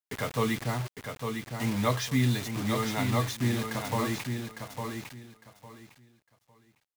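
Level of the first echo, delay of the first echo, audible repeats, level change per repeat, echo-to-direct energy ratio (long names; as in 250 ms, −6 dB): −6.0 dB, 855 ms, 3, −13.0 dB, −6.0 dB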